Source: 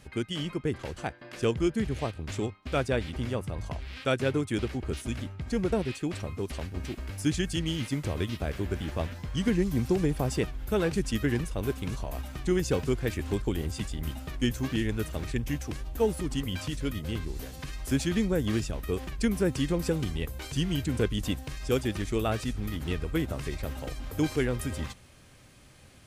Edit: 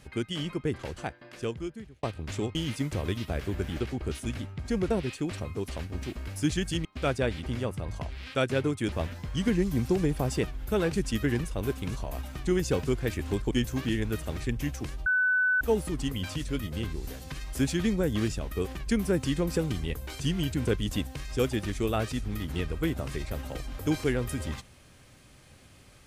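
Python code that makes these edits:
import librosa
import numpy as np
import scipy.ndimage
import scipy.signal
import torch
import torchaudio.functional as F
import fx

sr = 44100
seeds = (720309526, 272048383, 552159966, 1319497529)

y = fx.edit(x, sr, fx.fade_out_span(start_s=0.92, length_s=1.11),
    fx.swap(start_s=2.55, length_s=2.07, other_s=7.67, other_length_s=1.25),
    fx.cut(start_s=13.51, length_s=0.87),
    fx.insert_tone(at_s=15.93, length_s=0.55, hz=1500.0, db=-21.5), tone=tone)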